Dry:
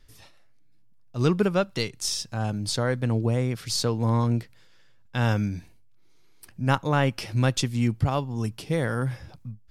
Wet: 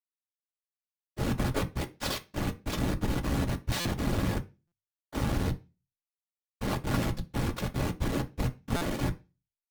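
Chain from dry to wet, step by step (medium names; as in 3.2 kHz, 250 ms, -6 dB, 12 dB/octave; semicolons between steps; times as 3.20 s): rotating-head pitch shifter -3 st; peaking EQ 610 Hz -8.5 dB 0.5 oct; comb 1.8 ms, depth 48%; in parallel at -2 dB: peak limiter -20 dBFS, peak gain reduction 9 dB; on the sum: Schmitt trigger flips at -20 dBFS; harmony voices -4 st -3 dB, +3 st -9 dB; whisper effect; one-sided clip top -27 dBFS; on a send at -5 dB: reverberation RT60 0.30 s, pre-delay 3 ms; on the sum: buffer glitch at 3.80/4.67/8.76 s, samples 256, times 8; trim -4.5 dB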